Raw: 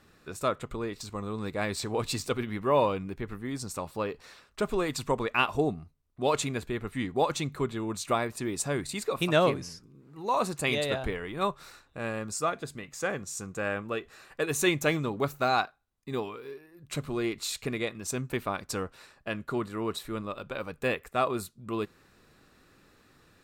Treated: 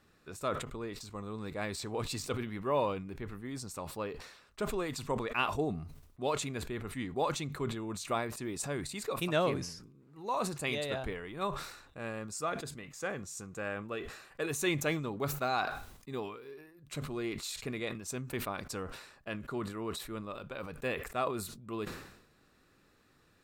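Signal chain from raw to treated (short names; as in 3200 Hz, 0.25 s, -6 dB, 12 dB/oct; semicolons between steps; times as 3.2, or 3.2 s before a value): sustainer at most 68 dB/s; gain -6.5 dB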